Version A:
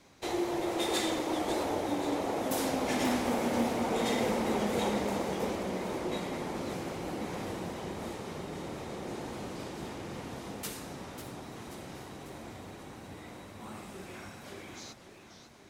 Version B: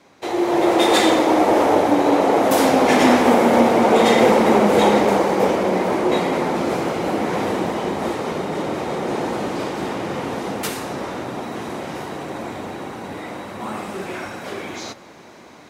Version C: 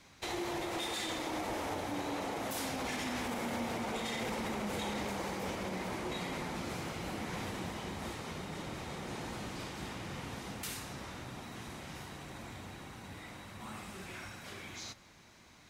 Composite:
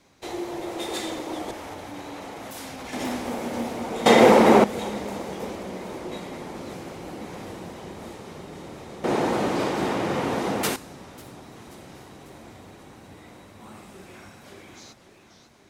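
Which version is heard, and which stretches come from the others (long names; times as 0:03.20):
A
0:01.51–0:02.93: punch in from C
0:04.06–0:04.64: punch in from B
0:09.04–0:10.76: punch in from B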